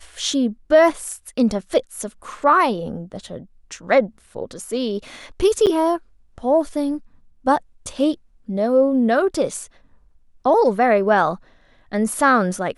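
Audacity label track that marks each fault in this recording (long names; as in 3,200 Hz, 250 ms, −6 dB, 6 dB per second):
5.660000	5.670000	drop-out 8.3 ms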